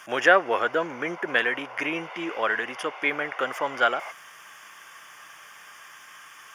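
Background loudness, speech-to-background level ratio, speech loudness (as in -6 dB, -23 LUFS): -40.0 LUFS, 14.5 dB, -25.5 LUFS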